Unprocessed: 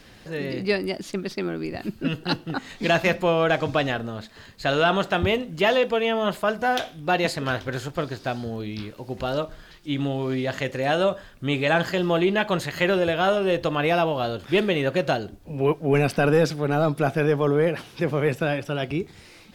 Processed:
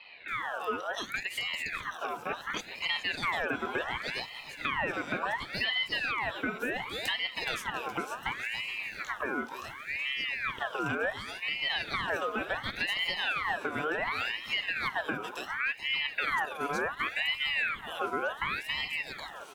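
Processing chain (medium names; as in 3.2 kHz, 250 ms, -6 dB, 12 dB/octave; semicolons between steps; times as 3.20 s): static phaser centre 930 Hz, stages 6; bands offset in time lows, highs 280 ms, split 1.8 kHz; compression 3:1, threshold -35 dBFS, peak gain reduction 13.5 dB; on a send: feedback delay 422 ms, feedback 59%, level -13 dB; on the sum: ring modulator with a swept carrier 1.7 kHz, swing 50%, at 0.69 Hz; trim +5 dB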